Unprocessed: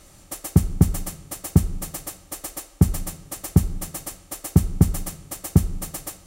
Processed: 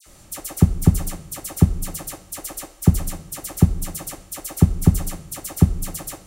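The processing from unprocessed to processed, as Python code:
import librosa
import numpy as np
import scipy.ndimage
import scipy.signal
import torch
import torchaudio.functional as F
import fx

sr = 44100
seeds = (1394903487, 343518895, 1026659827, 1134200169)

y = fx.dispersion(x, sr, late='lows', ms=65.0, hz=2000.0)
y = y * 10.0 ** (2.0 / 20.0)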